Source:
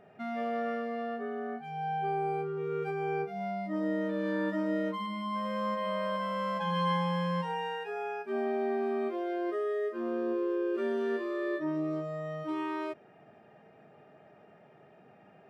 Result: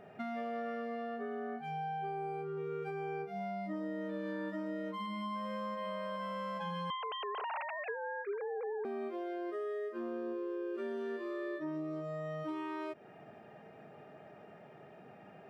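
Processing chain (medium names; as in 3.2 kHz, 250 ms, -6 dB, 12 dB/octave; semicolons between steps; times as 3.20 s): 6.90–8.85 s: formants replaced by sine waves; compression 6:1, threshold -40 dBFS, peak gain reduction 14.5 dB; trim +3 dB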